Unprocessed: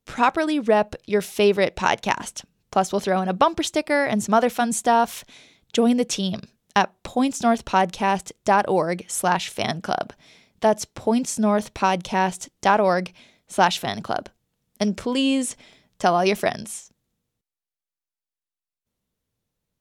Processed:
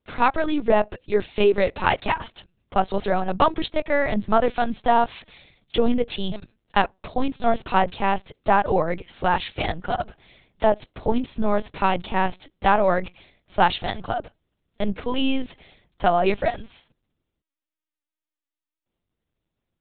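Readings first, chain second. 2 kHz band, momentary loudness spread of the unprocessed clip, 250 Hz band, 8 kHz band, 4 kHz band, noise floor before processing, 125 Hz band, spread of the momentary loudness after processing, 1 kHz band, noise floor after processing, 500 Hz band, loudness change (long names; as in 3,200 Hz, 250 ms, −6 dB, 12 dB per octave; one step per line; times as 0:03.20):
−1.0 dB, 9 LU, −3.5 dB, below −40 dB, −3.0 dB, below −85 dBFS, −1.0 dB, 9 LU, −0.5 dB, below −85 dBFS, −0.5 dB, −1.5 dB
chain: linear-prediction vocoder at 8 kHz pitch kept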